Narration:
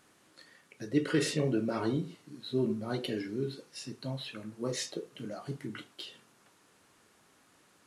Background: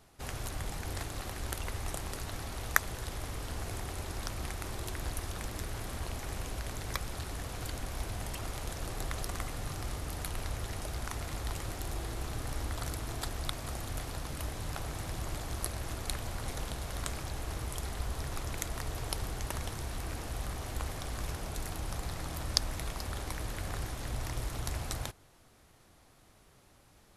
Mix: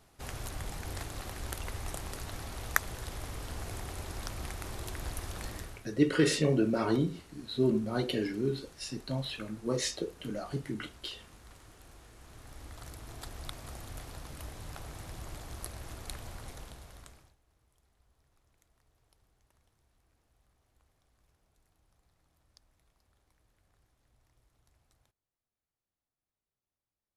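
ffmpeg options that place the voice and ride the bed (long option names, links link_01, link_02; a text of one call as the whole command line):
ffmpeg -i stem1.wav -i stem2.wav -filter_complex "[0:a]adelay=5050,volume=3dB[link_01];[1:a]volume=11dB,afade=type=out:start_time=5.5:duration=0.36:silence=0.141254,afade=type=in:start_time=12.16:duration=1.32:silence=0.237137,afade=type=out:start_time=16.3:duration=1.06:silence=0.0375837[link_02];[link_01][link_02]amix=inputs=2:normalize=0" out.wav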